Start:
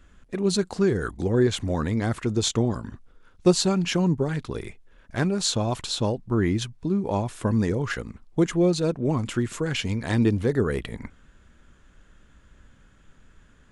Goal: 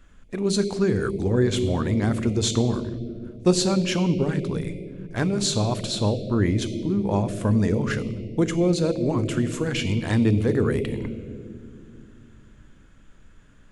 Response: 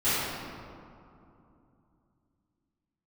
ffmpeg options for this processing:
-filter_complex "[0:a]asplit=2[link_01][link_02];[link_02]asuperstop=centerf=1200:order=20:qfactor=0.85[link_03];[1:a]atrim=start_sample=2205[link_04];[link_03][link_04]afir=irnorm=-1:irlink=0,volume=-19.5dB[link_05];[link_01][link_05]amix=inputs=2:normalize=0"

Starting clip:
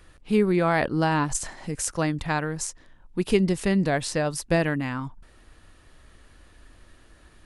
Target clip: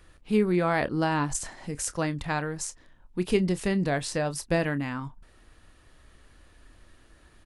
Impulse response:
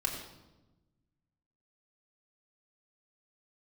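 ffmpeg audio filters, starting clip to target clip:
-filter_complex "[0:a]asplit=2[link_01][link_02];[link_02]adelay=28,volume=-14dB[link_03];[link_01][link_03]amix=inputs=2:normalize=0,volume=-3dB"

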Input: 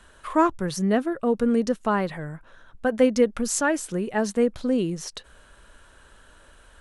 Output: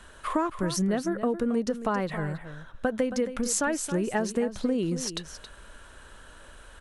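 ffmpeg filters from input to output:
ffmpeg -i in.wav -af "acompressor=threshold=-26dB:ratio=12,aecho=1:1:272:0.266,volume=3dB" out.wav

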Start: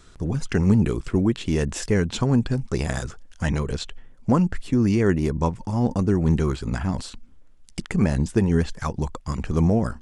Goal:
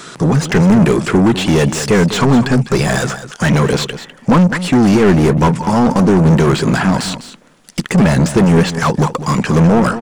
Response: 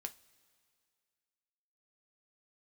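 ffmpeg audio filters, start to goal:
-filter_complex "[0:a]equalizer=frequency=150:width_type=o:width=0.85:gain=4.5,crystalizer=i=2.5:c=0,lowshelf=frequency=100:width_type=q:width=1.5:gain=-11,asplit=2[link_01][link_02];[link_02]highpass=frequency=720:poles=1,volume=29dB,asoftclip=type=tanh:threshold=-5.5dB[link_03];[link_01][link_03]amix=inputs=2:normalize=0,lowpass=frequency=1400:poles=1,volume=-6dB,aecho=1:1:202:0.237,volume=3dB"

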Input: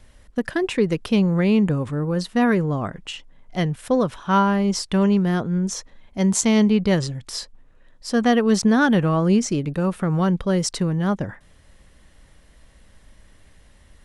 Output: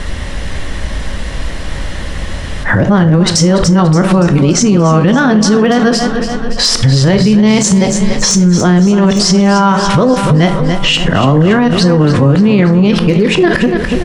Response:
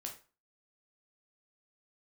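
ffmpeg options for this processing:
-filter_complex "[0:a]areverse,lowpass=6500,acompressor=threshold=-31dB:ratio=8,aeval=exprs='0.0596*(abs(mod(val(0)/0.0596+3,4)-2)-1)':channel_layout=same,aecho=1:1:287|574|861|1148|1435|1722:0.237|0.138|0.0798|0.0463|0.0268|0.0156,asplit=2[link_01][link_02];[1:a]atrim=start_sample=2205,asetrate=42777,aresample=44100[link_03];[link_02][link_03]afir=irnorm=-1:irlink=0,volume=1.5dB[link_04];[link_01][link_04]amix=inputs=2:normalize=0,alimiter=level_in=28dB:limit=-1dB:release=50:level=0:latency=1,volume=-1dB"

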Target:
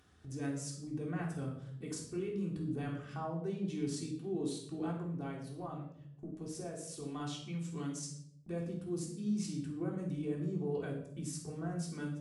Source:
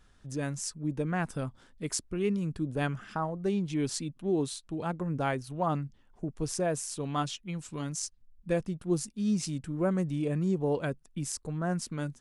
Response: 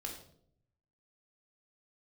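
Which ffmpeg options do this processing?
-filter_complex "[0:a]highpass=frequency=82:width=0.5412,highpass=frequency=82:width=1.3066,agate=range=-24dB:threshold=-59dB:ratio=16:detection=peak,lowshelf=frequency=220:gain=4.5,asettb=1/sr,asplit=3[link_01][link_02][link_03];[link_01]atrim=end=4.994[link_04];[link_02]atrim=start=4.99:end=7.2,asetpts=PTS-STARTPTS,afade=type=in:duration=0.004:curve=qsin,afade=type=out:start_time=2.206:duration=0.004:curve=qsin,acompressor=threshold=-34dB:ratio=6[link_05];[link_03]atrim=start=7.196[link_06];[link_04][link_05]acrossfade=duration=0.004:curve1=hsin:curve2=qsin[link_07];[link_07][link_06]acrossfade=duration=0.004:curve1=qsin:curve2=hsin,alimiter=level_in=1dB:limit=-24dB:level=0:latency=1:release=13,volume=-1dB,acompressor=mode=upward:threshold=-37dB:ratio=2.5[link_08];[1:a]atrim=start_sample=2205,asetrate=39690,aresample=44100[link_09];[link_08][link_09]afir=irnorm=-1:irlink=0,volume=-6dB"

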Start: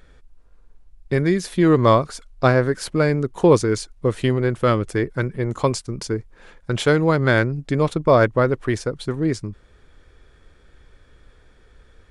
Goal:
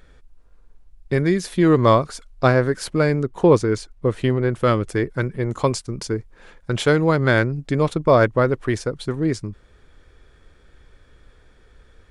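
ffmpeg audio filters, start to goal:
ffmpeg -i in.wav -filter_complex "[0:a]asettb=1/sr,asplit=3[link_01][link_02][link_03];[link_01]atrim=end=3.244[link_04];[link_02]atrim=start=3.24:end=4.53,asetpts=PTS-STARTPTS,afade=type=in:duration=0.004:curve=qsin,afade=type=out:start_time=1.286:duration=0.004:curve=qsin,highshelf=frequency=3900:gain=-7.5[link_05];[link_03]atrim=start=4.526[link_06];[link_04][link_05]acrossfade=duration=0.004:curve1=hsin:curve2=qsin[link_07];[link_07][link_06]acrossfade=duration=0.004:curve1=qsin:curve2=hsin" out.wav

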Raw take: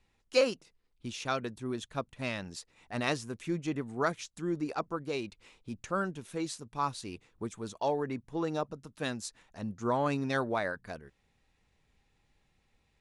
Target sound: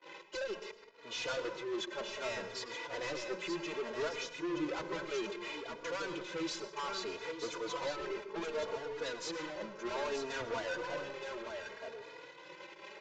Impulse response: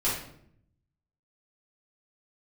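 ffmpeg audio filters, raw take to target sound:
-filter_complex "[0:a]aeval=exprs='val(0)+0.5*0.0158*sgn(val(0))':channel_layout=same,highpass=frequency=260:width=0.5412,highpass=frequency=260:width=1.3066,aecho=1:1:2:0.91,agate=range=-33dB:threshold=-35dB:ratio=3:detection=peak,alimiter=limit=-17.5dB:level=0:latency=1:release=452,adynamicsmooth=sensitivity=6:basefreq=2900,asoftclip=type=tanh:threshold=-38.5dB,aecho=1:1:922:0.473,asplit=2[link_01][link_02];[1:a]atrim=start_sample=2205,adelay=95[link_03];[link_02][link_03]afir=irnorm=-1:irlink=0,volume=-21.5dB[link_04];[link_01][link_04]amix=inputs=2:normalize=0,aresample=16000,aresample=44100,asplit=2[link_05][link_06];[link_06]adelay=3.5,afreqshift=0.64[link_07];[link_05][link_07]amix=inputs=2:normalize=1,volume=5.5dB"

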